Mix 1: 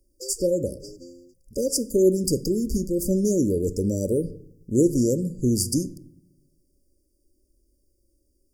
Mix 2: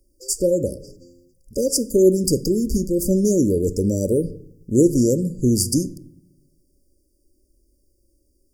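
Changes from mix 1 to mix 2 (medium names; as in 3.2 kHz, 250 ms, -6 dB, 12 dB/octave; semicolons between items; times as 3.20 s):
speech +4.0 dB; background -5.0 dB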